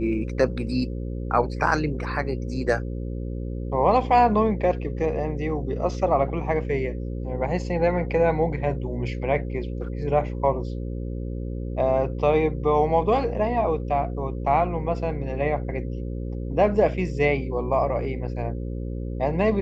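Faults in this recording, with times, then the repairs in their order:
buzz 60 Hz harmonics 9 -30 dBFS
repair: de-hum 60 Hz, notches 9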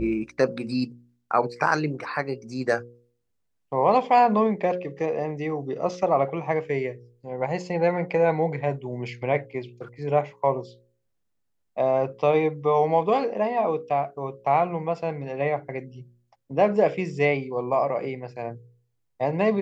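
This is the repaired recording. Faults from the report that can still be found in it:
none

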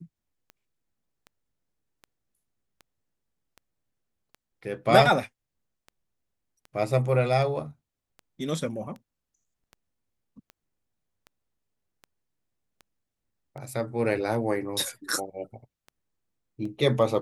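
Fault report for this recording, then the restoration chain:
tick 78 rpm -30 dBFS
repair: de-click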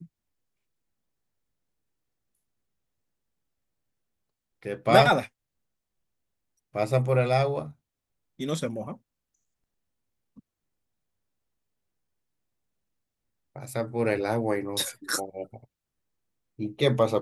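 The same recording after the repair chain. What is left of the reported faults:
none

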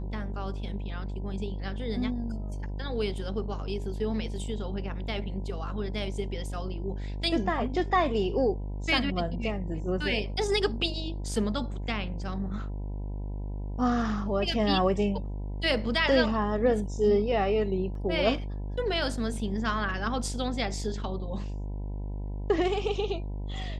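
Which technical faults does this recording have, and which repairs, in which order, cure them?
buzz 50 Hz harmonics 20 -34 dBFS
17.95 gap 2.5 ms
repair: de-hum 50 Hz, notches 20; interpolate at 17.95, 2.5 ms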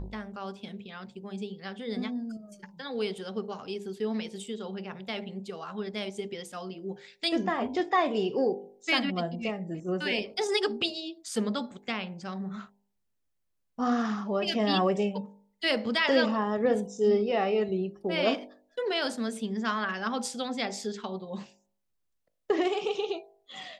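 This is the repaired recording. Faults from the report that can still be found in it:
none

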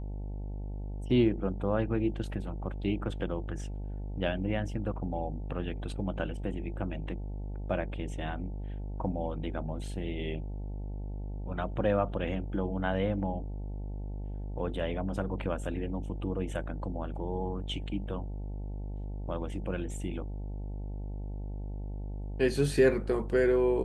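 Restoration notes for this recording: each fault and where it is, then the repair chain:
buzz 50 Hz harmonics 18 -37 dBFS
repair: de-hum 50 Hz, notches 18

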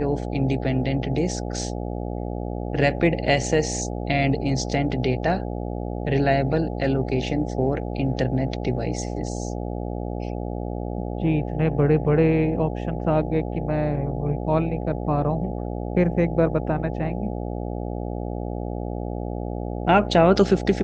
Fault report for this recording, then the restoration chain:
buzz 60 Hz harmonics 14 -29 dBFS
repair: de-hum 60 Hz, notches 14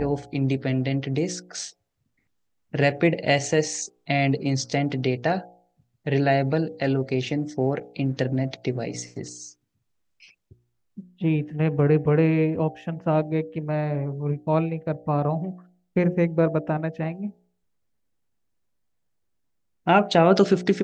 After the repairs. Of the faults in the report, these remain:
none

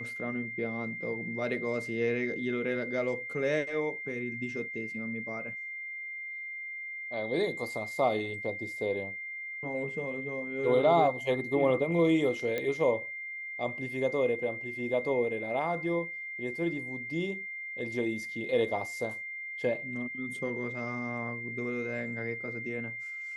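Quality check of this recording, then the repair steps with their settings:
tone 2100 Hz -37 dBFS
12.58 pop -19 dBFS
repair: de-click; notch 2100 Hz, Q 30

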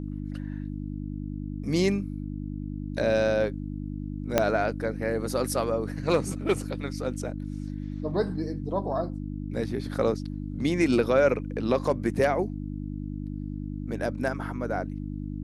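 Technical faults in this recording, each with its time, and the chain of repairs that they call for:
hum 50 Hz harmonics 6 -34 dBFS
4.38 pop -6 dBFS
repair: de-click; de-hum 50 Hz, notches 6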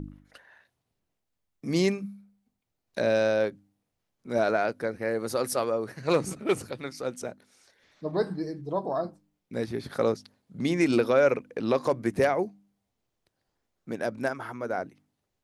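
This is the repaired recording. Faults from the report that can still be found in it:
4.38 pop

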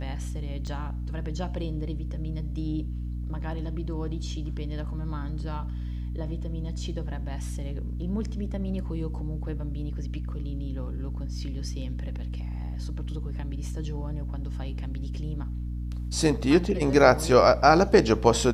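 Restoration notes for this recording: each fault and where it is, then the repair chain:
hum 60 Hz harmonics 5 -32 dBFS
0.67 gap 4.1 ms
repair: de-hum 60 Hz, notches 5; interpolate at 0.67, 4.1 ms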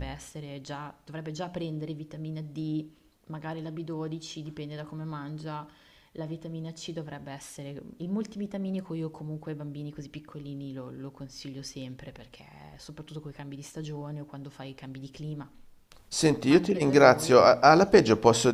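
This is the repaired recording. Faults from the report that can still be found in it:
none

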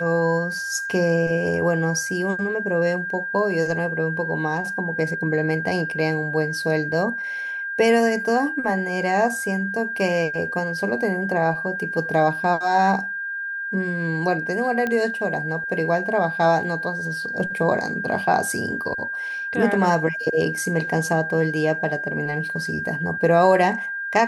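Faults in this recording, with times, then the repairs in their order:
tone 1600 Hz -26 dBFS
14.87 pop -13 dBFS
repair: de-click; notch 1600 Hz, Q 30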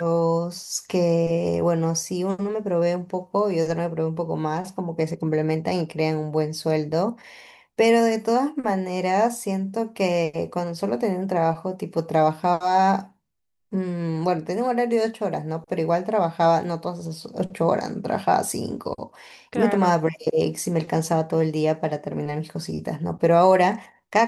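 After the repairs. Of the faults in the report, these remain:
none

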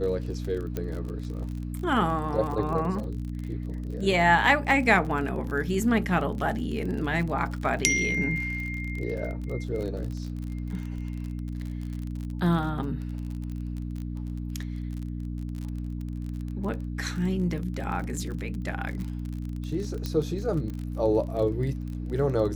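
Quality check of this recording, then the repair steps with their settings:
crackle 33/s -33 dBFS
hum 60 Hz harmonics 5 -33 dBFS
0.77 pop -17 dBFS
20.06 pop -17 dBFS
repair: de-click; de-hum 60 Hz, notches 5

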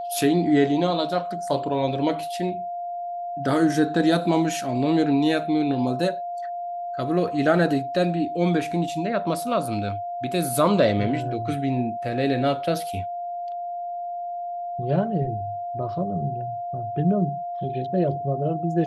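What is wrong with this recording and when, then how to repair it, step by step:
tone 700 Hz -28 dBFS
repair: notch 700 Hz, Q 30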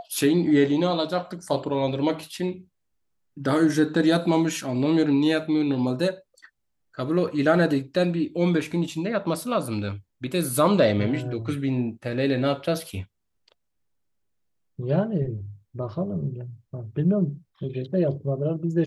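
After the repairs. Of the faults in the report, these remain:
none

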